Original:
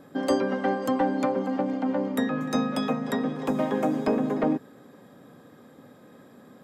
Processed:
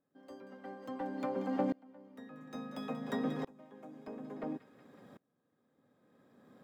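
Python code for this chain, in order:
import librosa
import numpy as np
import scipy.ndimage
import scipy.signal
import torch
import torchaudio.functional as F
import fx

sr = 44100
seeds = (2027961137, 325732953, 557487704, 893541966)

p1 = scipy.signal.medfilt(x, 5)
p2 = p1 + fx.echo_wet_highpass(p1, sr, ms=185, feedback_pct=57, hz=1800.0, wet_db=-14, dry=0)
p3 = fx.tremolo_decay(p2, sr, direction='swelling', hz=0.58, depth_db=30)
y = F.gain(torch.from_numpy(p3), -3.5).numpy()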